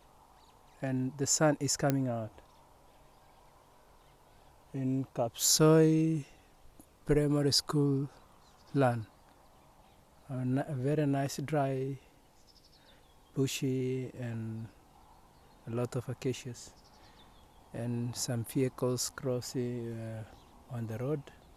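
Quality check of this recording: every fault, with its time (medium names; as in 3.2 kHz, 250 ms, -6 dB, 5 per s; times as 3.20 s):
1.90 s: pop -14 dBFS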